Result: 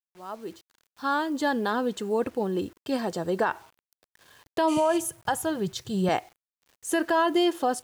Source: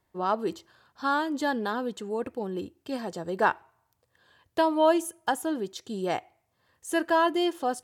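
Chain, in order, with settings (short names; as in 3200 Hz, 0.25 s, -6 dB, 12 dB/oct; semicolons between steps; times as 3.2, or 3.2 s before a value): opening faded in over 2.03 s; 4.71–4.94 spectral repair 2000–12000 Hz after; 4.77–6.09 resonant low shelf 190 Hz +10.5 dB, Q 3; bit-crush 10-bit; limiter -20 dBFS, peak gain reduction 10 dB; gain +5 dB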